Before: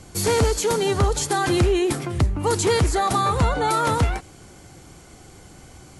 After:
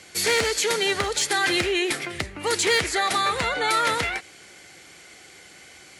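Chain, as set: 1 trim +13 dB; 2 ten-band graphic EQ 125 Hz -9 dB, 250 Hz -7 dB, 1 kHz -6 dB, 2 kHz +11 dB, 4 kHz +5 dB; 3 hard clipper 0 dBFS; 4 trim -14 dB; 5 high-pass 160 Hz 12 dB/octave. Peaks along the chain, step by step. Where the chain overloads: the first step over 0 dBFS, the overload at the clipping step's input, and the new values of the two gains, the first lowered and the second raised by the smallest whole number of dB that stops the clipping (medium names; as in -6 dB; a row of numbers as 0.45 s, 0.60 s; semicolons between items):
+1.5 dBFS, +6.5 dBFS, 0.0 dBFS, -14.0 dBFS, -11.0 dBFS; step 1, 6.5 dB; step 1 +6 dB, step 4 -7 dB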